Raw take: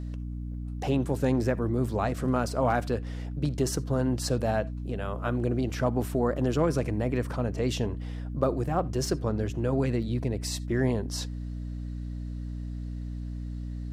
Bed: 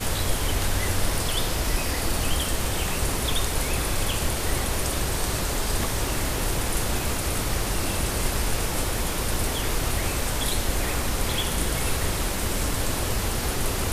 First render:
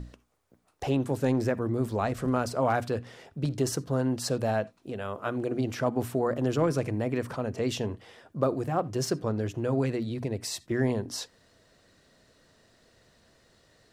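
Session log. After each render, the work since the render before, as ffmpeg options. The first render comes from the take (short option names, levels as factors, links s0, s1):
-af "bandreject=f=60:t=h:w=6,bandreject=f=120:t=h:w=6,bandreject=f=180:t=h:w=6,bandreject=f=240:t=h:w=6,bandreject=f=300:t=h:w=6"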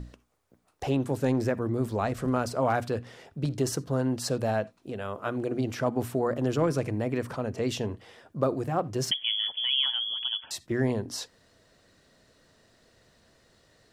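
-filter_complex "[0:a]asettb=1/sr,asplit=3[s0][s1][s2];[s0]atrim=end=9.114[s3];[s1]atrim=start=9.11:end=10.51,asetpts=PTS-STARTPTS,afade=t=in:d=0.004:c=qsin,afade=t=out:st=1.396:d=0.004:c=qsin,lowpass=f=3000:t=q:w=0.5098,lowpass=f=3000:t=q:w=0.6013,lowpass=f=3000:t=q:w=0.9,lowpass=f=3000:t=q:w=2.563,afreqshift=-3500[s4];[s2]atrim=start=10.506[s5];[s3][s4]acrossfade=d=0.004:c1=hsin:c2=qsin[s6];[s6][s5]acrossfade=d=0.004:c1=qsin:c2=hsin"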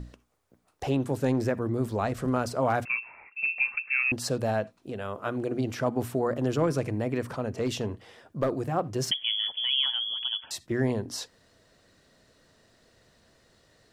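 -filter_complex "[0:a]asettb=1/sr,asplit=3[s0][s1][s2];[s0]atrim=end=2.854[s3];[s1]atrim=start=2.85:end=4.12,asetpts=PTS-STARTPTS,afade=t=in:d=0.004:c=qsin,afade=t=out:st=1.266:d=0.004:c=qsin,lowpass=f=2400:t=q:w=0.5098,lowpass=f=2400:t=q:w=0.6013,lowpass=f=2400:t=q:w=0.9,lowpass=f=2400:t=q:w=2.563,afreqshift=-2800[s4];[s2]atrim=start=4.116[s5];[s3][s4]acrossfade=d=0.004:c1=hsin:c2=qsin[s6];[s6][s5]acrossfade=d=0.004:c1=qsin:c2=hsin,asettb=1/sr,asplit=3[s7][s8][s9];[s7]atrim=end=7.554[s10];[s8]atrim=start=7.55:end=8.67,asetpts=PTS-STARTPTS,afade=t=in:d=0.004:c=qsin,afade=t=out:st=1.116:d=0.004:c=qsin,aeval=exprs='clip(val(0),-1,0.0944)':c=same[s11];[s9]atrim=start=8.666[s12];[s10][s11]acrossfade=d=0.004:c1=hsin:c2=qsin[s13];[s13][s12]acrossfade=d=0.004:c1=qsin:c2=hsin"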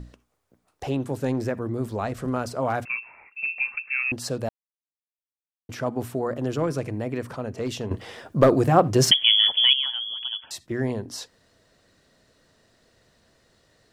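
-filter_complex "[0:a]asplit=5[s0][s1][s2][s3][s4];[s0]atrim=end=4.49,asetpts=PTS-STARTPTS,afade=t=out:st=4.486:d=0.004:c=hsin[s5];[s1]atrim=start=4.49:end=5.69,asetpts=PTS-STARTPTS,volume=0[s6];[s2]atrim=start=5.69:end=7.912,asetpts=PTS-STARTPTS,afade=t=in:d=0.004:c=hsin[s7];[s3]atrim=start=7.908:end=9.732,asetpts=PTS-STARTPTS,volume=3.55[s8];[s4]atrim=start=9.728[s9];[s5][s6][s7]concat=n=3:v=0:a=1[s10];[s10][s8]acrossfade=d=0.004:c1=hsin:c2=hsin[s11];[s11][s9]acrossfade=d=0.004:c1=hsin:c2=hsin"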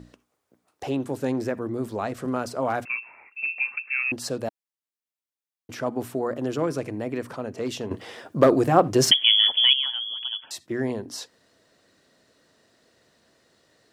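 -af "highpass=f=210:p=1,equalizer=f=300:t=o:w=0.8:g=3"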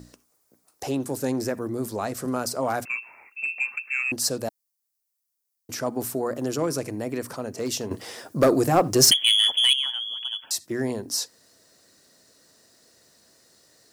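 -af "asoftclip=type=tanh:threshold=0.376,aexciter=amount=2.1:drive=8.9:freq=4500"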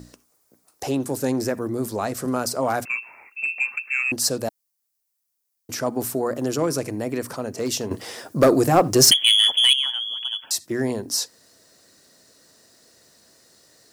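-af "volume=1.41,alimiter=limit=0.708:level=0:latency=1"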